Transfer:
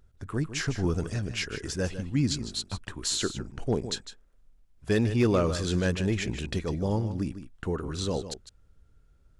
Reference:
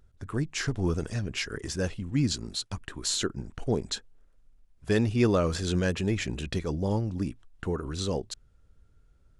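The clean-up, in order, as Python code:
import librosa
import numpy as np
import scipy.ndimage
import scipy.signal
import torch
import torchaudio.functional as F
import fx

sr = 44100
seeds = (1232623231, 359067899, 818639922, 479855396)

y = fx.fix_declip(x, sr, threshold_db=-15.5)
y = fx.fix_echo_inverse(y, sr, delay_ms=154, level_db=-11.5)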